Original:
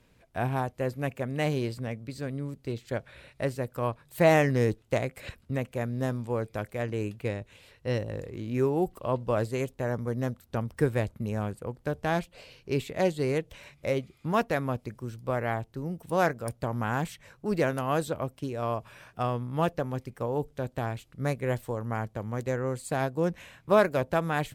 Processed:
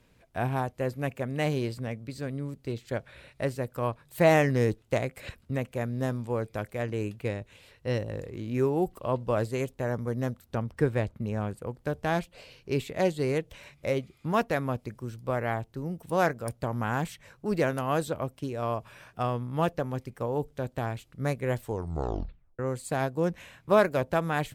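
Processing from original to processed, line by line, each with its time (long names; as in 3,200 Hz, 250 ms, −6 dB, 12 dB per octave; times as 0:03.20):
0:10.55–0:11.51: high-shelf EQ 7,700 Hz −11 dB
0:21.64: tape stop 0.95 s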